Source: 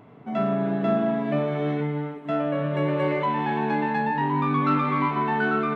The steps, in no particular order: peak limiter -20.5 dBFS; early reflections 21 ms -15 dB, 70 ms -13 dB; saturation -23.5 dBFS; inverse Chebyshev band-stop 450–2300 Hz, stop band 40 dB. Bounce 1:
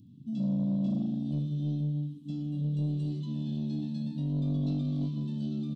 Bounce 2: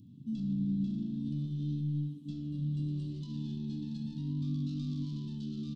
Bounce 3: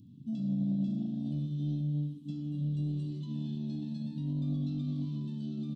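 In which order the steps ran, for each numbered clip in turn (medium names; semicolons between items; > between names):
inverse Chebyshev band-stop > peak limiter > early reflections > saturation; peak limiter > early reflections > saturation > inverse Chebyshev band-stop; peak limiter > inverse Chebyshev band-stop > saturation > early reflections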